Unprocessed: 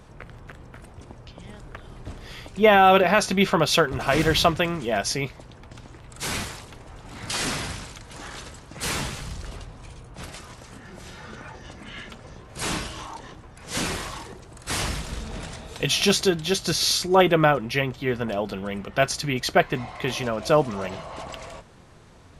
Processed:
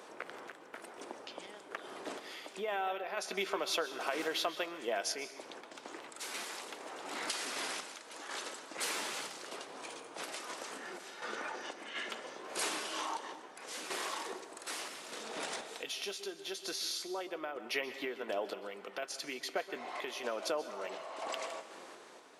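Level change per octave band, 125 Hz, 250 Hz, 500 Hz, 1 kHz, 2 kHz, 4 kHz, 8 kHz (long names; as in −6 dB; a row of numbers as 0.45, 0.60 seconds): −35.5, −19.5, −15.5, −15.5, −13.0, −12.5, −11.0 decibels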